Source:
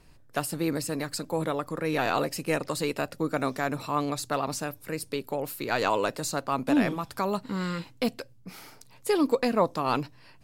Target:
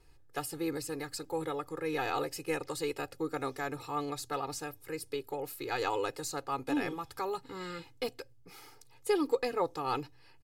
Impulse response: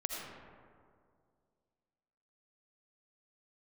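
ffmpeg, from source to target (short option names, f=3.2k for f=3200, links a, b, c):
-af "aecho=1:1:2.4:0.91,volume=-9dB"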